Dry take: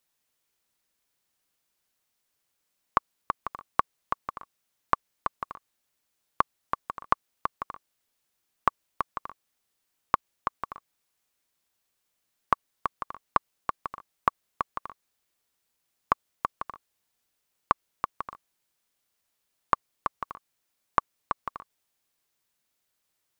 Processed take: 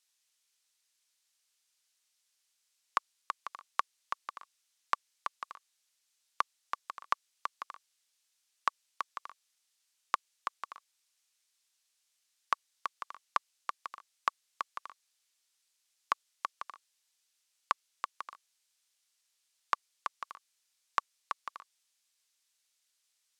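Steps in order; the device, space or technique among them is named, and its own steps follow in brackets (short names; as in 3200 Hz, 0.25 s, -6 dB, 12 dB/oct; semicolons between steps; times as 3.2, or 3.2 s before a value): piezo pickup straight into a mixer (LPF 6300 Hz 12 dB/oct; differentiator); gain +9.5 dB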